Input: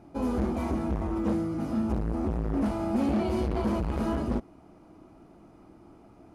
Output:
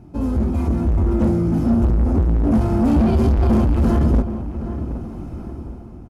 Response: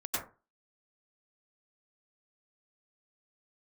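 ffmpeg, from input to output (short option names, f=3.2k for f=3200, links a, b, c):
-filter_complex "[0:a]bass=f=250:g=15,treble=f=4k:g=3,dynaudnorm=f=200:g=9:m=16dB,asoftclip=type=tanh:threshold=-12dB,asplit=2[a][b];[b]adelay=802,lowpass=f=1.7k:p=1,volume=-11dB,asplit=2[c][d];[d]adelay=802,lowpass=f=1.7k:p=1,volume=0.44,asplit=2[e][f];[f]adelay=802,lowpass=f=1.7k:p=1,volume=0.44,asplit=2[g][h];[h]adelay=802,lowpass=f=1.7k:p=1,volume=0.44,asplit=2[i][j];[j]adelay=802,lowpass=f=1.7k:p=1,volume=0.44[k];[a][c][e][g][i][k]amix=inputs=6:normalize=0,asetrate=45938,aresample=44100"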